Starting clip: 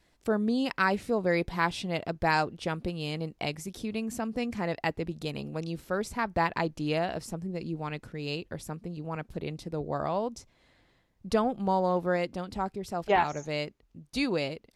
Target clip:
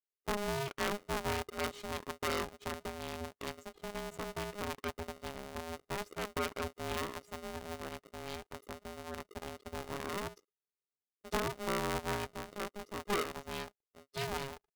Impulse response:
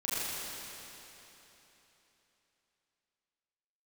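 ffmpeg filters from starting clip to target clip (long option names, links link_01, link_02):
-af "afftdn=noise_reduction=33:noise_floor=-39,aeval=exprs='max(val(0),0)':channel_layout=same,aeval=exprs='val(0)*sgn(sin(2*PI*410*n/s))':channel_layout=same,volume=-6.5dB"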